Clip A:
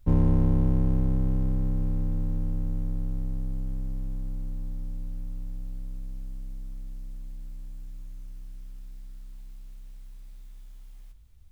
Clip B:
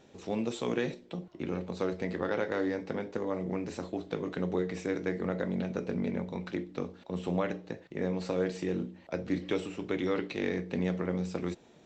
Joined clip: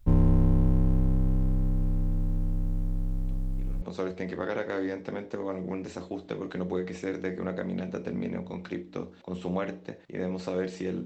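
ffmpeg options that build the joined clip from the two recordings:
-filter_complex "[1:a]asplit=2[a][b];[0:a]apad=whole_dur=11.05,atrim=end=11.05,atrim=end=3.822[c];[b]atrim=start=1.638:end=8.87[d];[a]atrim=start=1.05:end=1.64,asetpts=PTS-STARTPTS,volume=-16dB,afade=t=in:d=0.004:c=hsin,afade=t=out:st=0.586:d=0.004:c=hsin,adelay=3230[e];[c][d]acrossfade=d=0.004:c1=hsin:c2=hsin[f];[f][e]amix=inputs=2:normalize=0"

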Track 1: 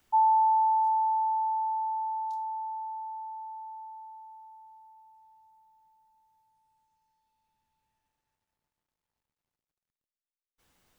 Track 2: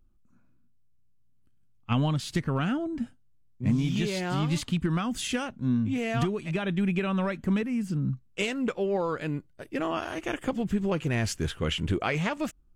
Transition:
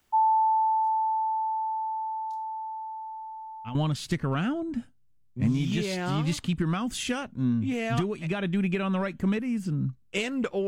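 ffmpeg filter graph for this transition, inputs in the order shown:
-filter_complex "[1:a]asplit=2[a][b];[0:a]apad=whole_dur=10.67,atrim=end=10.67,atrim=end=3.752[c];[b]atrim=start=1.988:end=8.91[d];[a]atrim=start=1.29:end=1.99,asetpts=PTS-STARTPTS,volume=-12.5dB,afade=t=in:d=0.004:c=hsin,afade=t=out:st=0.696:d=0.004:c=hsin,adelay=134505S[e];[c][d]acrossfade=d=0.004:c1=hsin:c2=hsin[f];[f][e]amix=inputs=2:normalize=0"

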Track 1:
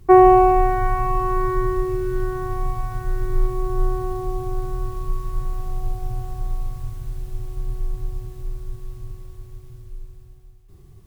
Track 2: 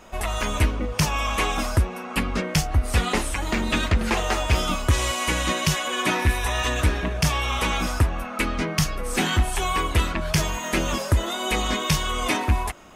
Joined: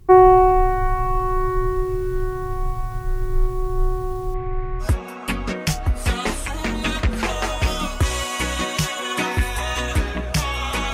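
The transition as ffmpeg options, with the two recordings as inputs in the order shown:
-filter_complex "[0:a]asettb=1/sr,asplit=3[a][b][c];[a]atrim=end=4.344[d];[b]atrim=start=4.34:end=4.89,asetpts=PTS-STARTPTS,afade=t=in:d=0.004:c=qsin,afade=t=out:st=0.546:d=0.004:c=qsin,lowpass=f=2.1k:t=q:w=5[e];[c]atrim=start=4.886[f];[d][e]acrossfade=d=0.004:c1=hsin:c2=qsin[g];[g][f]acrossfade=d=0.004:c1=qsin:c2=hsin,apad=whole_dur=10.93,atrim=end=10.93,atrim=end=4.89,asetpts=PTS-STARTPTS[h];[1:a]atrim=start=1.67:end=7.81,asetpts=PTS-STARTPTS[i];[h][i]acrossfade=d=0.1:c1=tri:c2=tri"

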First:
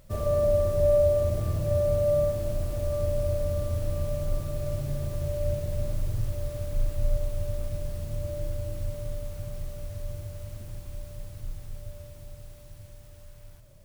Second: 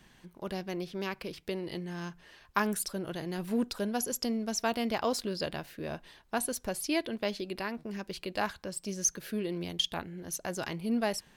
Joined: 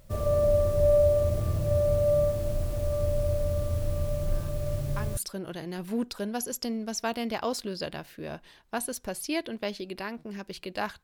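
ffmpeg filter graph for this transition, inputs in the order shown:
-filter_complex "[1:a]asplit=2[a][b];[0:a]apad=whole_dur=11.03,atrim=end=11.03,atrim=end=5.172[c];[b]atrim=start=2.768:end=8.63[d];[a]atrim=start=1.82:end=2.77,asetpts=PTS-STARTPTS,volume=-10.5dB,afade=t=in:d=0.004:c=hsin,afade=t=out:st=0.946:d=0.004:c=hsin,adelay=4220[e];[c][d]acrossfade=d=0.004:c1=hsin:c2=hsin[f];[f][e]amix=inputs=2:normalize=0"

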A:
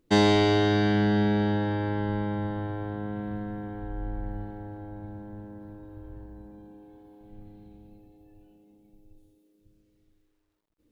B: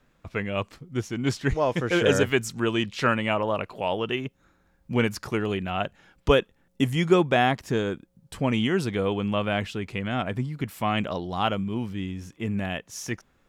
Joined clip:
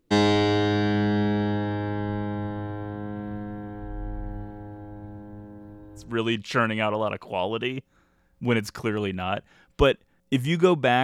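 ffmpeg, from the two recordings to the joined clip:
-filter_complex "[0:a]apad=whole_dur=11.03,atrim=end=11.03,atrim=end=6.21,asetpts=PTS-STARTPTS[a];[1:a]atrim=start=2.43:end=7.51,asetpts=PTS-STARTPTS[b];[a][b]acrossfade=d=0.26:c1=tri:c2=tri"

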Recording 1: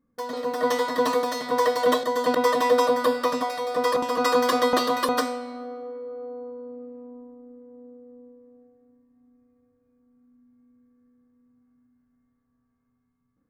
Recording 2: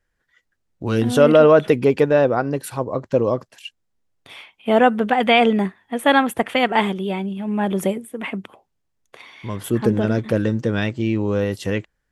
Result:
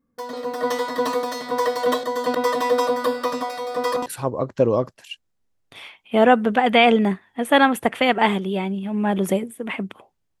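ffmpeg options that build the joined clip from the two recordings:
-filter_complex "[0:a]apad=whole_dur=10.4,atrim=end=10.4,atrim=end=4.062[a];[1:a]atrim=start=2.598:end=8.94[b];[a][b]acrossfade=d=0.004:c1=hsin:c2=hsin"

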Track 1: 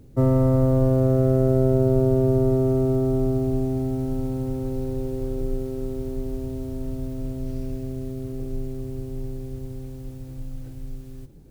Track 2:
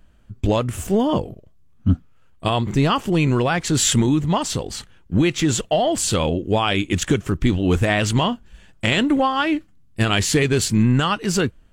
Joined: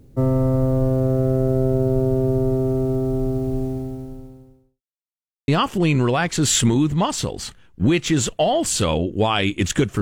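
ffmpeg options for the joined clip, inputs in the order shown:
-filter_complex "[0:a]apad=whole_dur=10.01,atrim=end=10.01,asplit=2[a][b];[a]atrim=end=4.82,asetpts=PTS-STARTPTS,afade=t=out:st=3.66:d=1.16:c=qua[c];[b]atrim=start=4.82:end=5.48,asetpts=PTS-STARTPTS,volume=0[d];[1:a]atrim=start=2.8:end=7.33,asetpts=PTS-STARTPTS,afade=t=in:d=0.004:c=hsin[e];[c][d][e]concat=n=3:v=0:a=1"

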